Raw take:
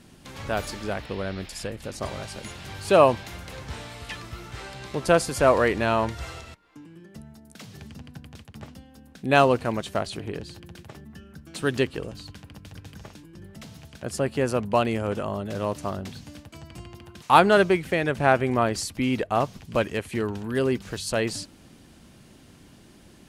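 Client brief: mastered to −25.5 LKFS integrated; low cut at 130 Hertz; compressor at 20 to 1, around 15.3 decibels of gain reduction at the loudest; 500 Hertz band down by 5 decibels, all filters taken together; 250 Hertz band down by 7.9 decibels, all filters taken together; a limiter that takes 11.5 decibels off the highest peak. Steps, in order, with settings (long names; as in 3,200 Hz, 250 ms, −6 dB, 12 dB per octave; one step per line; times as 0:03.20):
high-pass filter 130 Hz
parametric band 250 Hz −8.5 dB
parametric band 500 Hz −4.5 dB
downward compressor 20 to 1, threshold −26 dBFS
level +13.5 dB
brickwall limiter −12 dBFS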